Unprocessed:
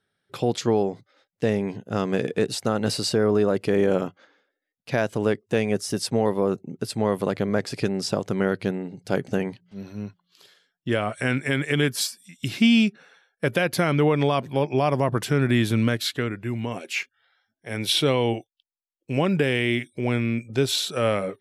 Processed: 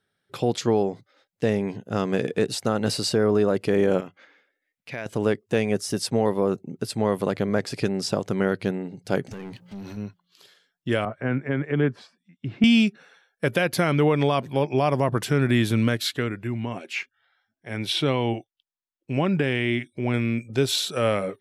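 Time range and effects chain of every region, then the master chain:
4–5.06 bell 2200 Hz +10 dB 0.71 oct + compressor 1.5:1, threshold -49 dBFS
9.31–9.97 compressor 4:1, threshold -42 dBFS + sample leveller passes 3
11.05–12.64 LPF 1300 Hz + three-band expander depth 40%
16.47–20.14 LPF 3100 Hz 6 dB/oct + bell 480 Hz -5.5 dB 0.33 oct
whole clip: dry

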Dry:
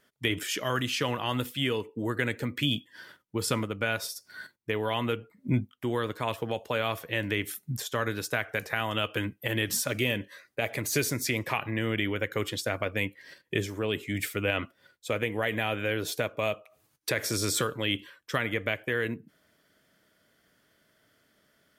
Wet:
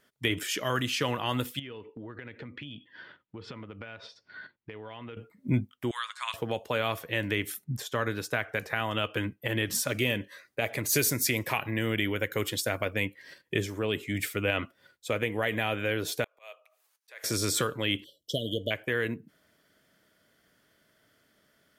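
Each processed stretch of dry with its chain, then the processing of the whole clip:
1.59–5.17 LPF 3600 Hz 24 dB/oct + compressor, threshold -39 dBFS
5.91–6.34 elliptic band-pass 1100–8700 Hz, stop band 50 dB + high shelf 4700 Hz +10.5 dB
7.64–9.75 high shelf 4400 Hz -5 dB + mismatched tape noise reduction decoder only
10.89–12.94 high shelf 8400 Hz +10 dB + notch 1200 Hz, Q 20
16.24–17.24 Bessel high-pass 790 Hz, order 8 + auto swell 0.484 s
18.04–18.71 brick-wall FIR band-stop 690–2900 Hz + dynamic EQ 3300 Hz, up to +7 dB, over -54 dBFS, Q 1.2
whole clip: dry

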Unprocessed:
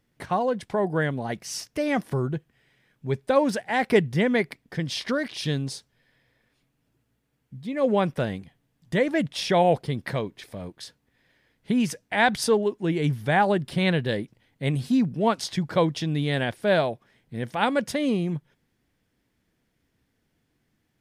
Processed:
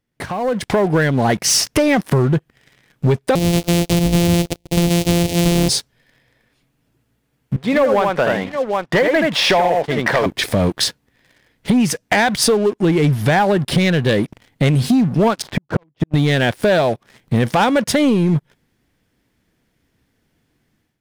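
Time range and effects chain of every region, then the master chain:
3.35–5.69 sample sorter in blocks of 256 samples + compressor 12:1, threshold -24 dBFS + Butterworth band-stop 1300 Hz, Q 0.73
7.56–10.26 band-pass 1100 Hz, Q 0.81 + tapped delay 79/766 ms -4/-17.5 dB
15.42–16.14 LPF 1400 Hz + flipped gate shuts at -19 dBFS, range -38 dB
whole clip: compressor 12:1, threshold -34 dBFS; sample leveller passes 3; AGC gain up to 13 dB

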